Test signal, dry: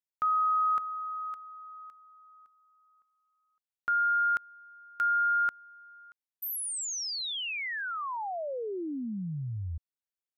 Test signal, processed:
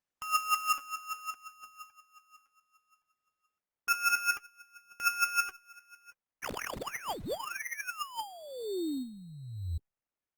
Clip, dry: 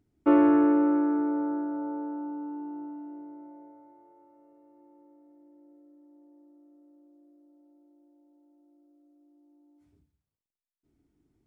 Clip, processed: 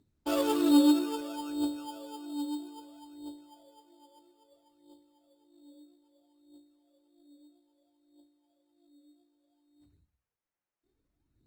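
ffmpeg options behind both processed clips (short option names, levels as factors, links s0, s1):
-af "aphaser=in_gain=1:out_gain=1:delay=3.7:decay=0.76:speed=0.61:type=triangular,acrusher=samples=11:mix=1:aa=0.000001,volume=0.398" -ar 48000 -c:a libopus -b:a 20k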